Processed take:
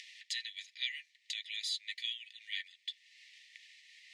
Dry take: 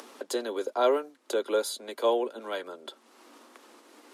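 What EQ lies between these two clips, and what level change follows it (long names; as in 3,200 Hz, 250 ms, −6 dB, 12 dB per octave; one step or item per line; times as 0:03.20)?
Chebyshev high-pass filter 1,800 Hz, order 10
high-frequency loss of the air 150 metres
+7.5 dB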